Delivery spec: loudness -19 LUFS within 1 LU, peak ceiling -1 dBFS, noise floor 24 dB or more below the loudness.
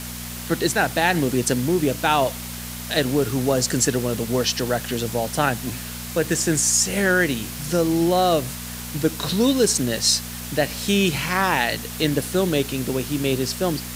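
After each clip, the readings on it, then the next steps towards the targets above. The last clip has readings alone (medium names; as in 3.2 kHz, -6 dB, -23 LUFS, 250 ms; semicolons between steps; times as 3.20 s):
hum 60 Hz; highest harmonic 240 Hz; hum level -34 dBFS; noise floor -33 dBFS; noise floor target -46 dBFS; loudness -21.5 LUFS; peak level -4.0 dBFS; loudness target -19.0 LUFS
-> de-hum 60 Hz, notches 4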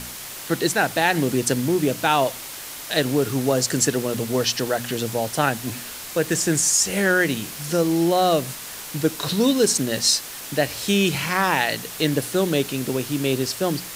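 hum not found; noise floor -36 dBFS; noise floor target -46 dBFS
-> noise print and reduce 10 dB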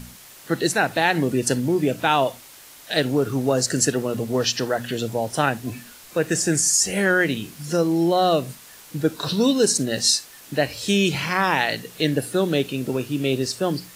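noise floor -45 dBFS; noise floor target -46 dBFS
-> noise print and reduce 6 dB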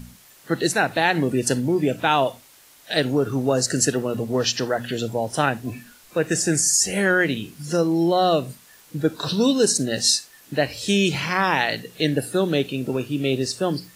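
noise floor -51 dBFS; loudness -21.5 LUFS; peak level -4.5 dBFS; loudness target -19.0 LUFS
-> trim +2.5 dB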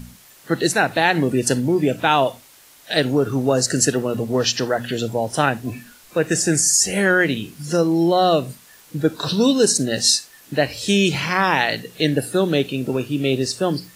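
loudness -19.0 LUFS; peak level -2.0 dBFS; noise floor -49 dBFS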